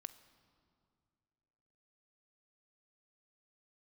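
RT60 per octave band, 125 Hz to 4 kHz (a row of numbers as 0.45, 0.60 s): 2.5, 2.4, 2.6, 2.1, 1.8, 1.6 s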